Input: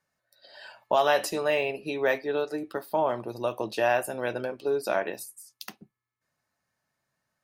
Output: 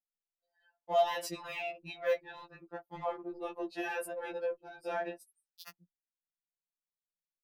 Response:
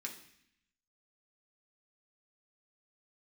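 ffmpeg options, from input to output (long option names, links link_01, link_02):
-filter_complex "[0:a]anlmdn=3.98,asplit=2[link_01][link_02];[link_02]asoftclip=type=tanh:threshold=-26dB,volume=-7.5dB[link_03];[link_01][link_03]amix=inputs=2:normalize=0,afftfilt=real='re*2.83*eq(mod(b,8),0)':imag='im*2.83*eq(mod(b,8),0)':win_size=2048:overlap=0.75,volume=-7.5dB"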